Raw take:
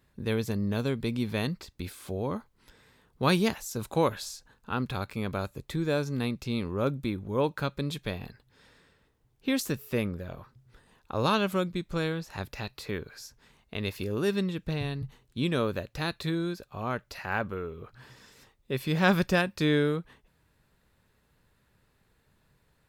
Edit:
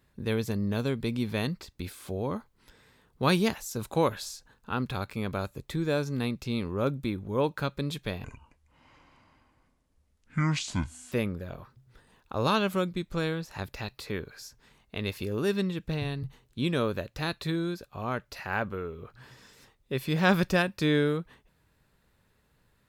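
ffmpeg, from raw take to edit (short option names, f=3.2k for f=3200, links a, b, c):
-filter_complex "[0:a]asplit=3[a][b][c];[a]atrim=end=8.244[d];[b]atrim=start=8.24:end=9.91,asetpts=PTS-STARTPTS,asetrate=25578,aresample=44100[e];[c]atrim=start=9.906[f];[d][e]acrossfade=d=0.004:c1=hsin:c2=hsin[g];[g][f]acrossfade=d=0.004:c1=hsin:c2=hsin"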